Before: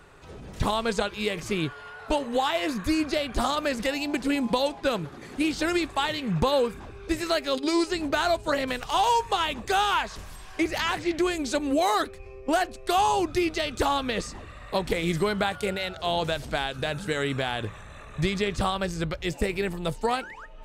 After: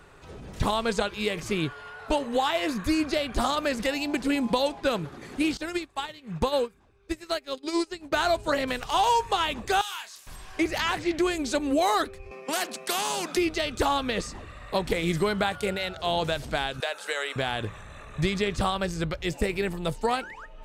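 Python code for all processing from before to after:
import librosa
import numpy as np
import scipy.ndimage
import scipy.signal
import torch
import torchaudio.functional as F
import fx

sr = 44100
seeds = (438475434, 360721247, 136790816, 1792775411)

y = fx.chain(x, sr, fx.high_shelf(hz=4200.0, db=2.5),
    fx.upward_expand(threshold_db=-33.0, expansion=2.5), at=(5.57, 8.12))
y = fx.chain(y, sr, fx.differentiator(),
    fx.doubler(ms=28.0, db=-5.5), at=(9.81, 10.27))
y = fx.chain(y, sr, fx.cheby_ripple_highpass(hz=160.0, ripple_db=3),
    fx.spectral_comp(ratio=2.0), at=(12.31, 13.37))
y = fx.chain(y, sr, fx.highpass(hz=520.0, slope=24),
    fx.band_squash(depth_pct=70), at=(16.8, 17.36))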